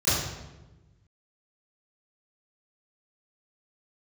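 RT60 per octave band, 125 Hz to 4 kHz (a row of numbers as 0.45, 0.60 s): 1.8, 1.6, 1.2, 1.0, 0.90, 0.75 s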